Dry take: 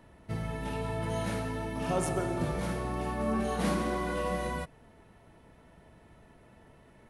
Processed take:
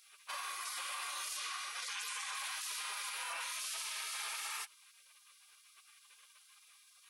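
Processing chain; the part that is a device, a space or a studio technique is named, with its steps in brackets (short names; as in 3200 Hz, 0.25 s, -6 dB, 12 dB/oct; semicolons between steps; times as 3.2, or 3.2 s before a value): 1.37–2.35 LPF 8400 Hz 12 dB/oct; spectral gate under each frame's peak -30 dB weak; laptop speaker (HPF 390 Hz 24 dB/oct; bell 1100 Hz +10 dB 0.54 oct; bell 2400 Hz +4 dB 0.33 oct; limiter -46.5 dBFS, peak gain reduction 14 dB); gain +14.5 dB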